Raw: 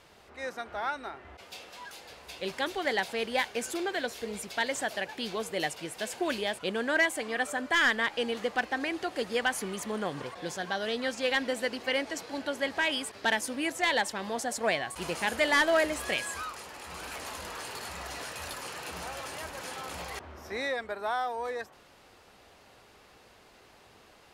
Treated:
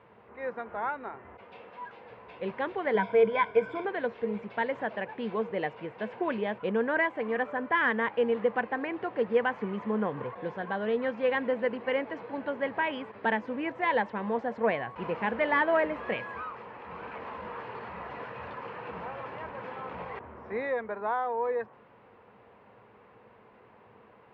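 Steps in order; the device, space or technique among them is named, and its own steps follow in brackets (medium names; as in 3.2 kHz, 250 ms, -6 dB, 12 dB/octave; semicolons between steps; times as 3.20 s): bass cabinet (cabinet simulation 61–2400 Hz, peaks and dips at 65 Hz -5 dB, 120 Hz +9 dB, 210 Hz +9 dB, 470 Hz +9 dB, 990 Hz +8 dB); 2.94–3.85 s: rippled EQ curve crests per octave 1.7, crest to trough 15 dB; trim -2.5 dB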